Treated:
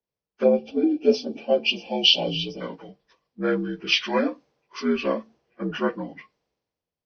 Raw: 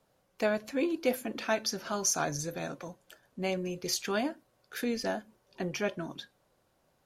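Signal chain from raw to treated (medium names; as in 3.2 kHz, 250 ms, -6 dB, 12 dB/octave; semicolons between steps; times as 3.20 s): frequency axis rescaled in octaves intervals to 78%; time-frequency box 0.44–2.61 s, 880–2300 Hz -22 dB; three bands expanded up and down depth 70%; trim +8.5 dB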